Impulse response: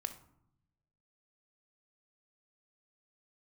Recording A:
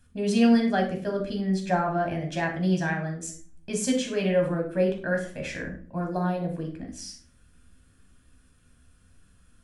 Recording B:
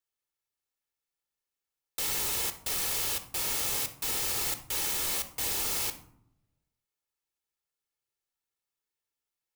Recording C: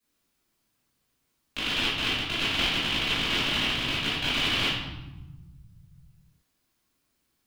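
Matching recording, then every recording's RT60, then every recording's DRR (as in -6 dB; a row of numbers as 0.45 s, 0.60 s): B; 0.45 s, 0.75 s, 1.1 s; 1.0 dB, 9.0 dB, -11.5 dB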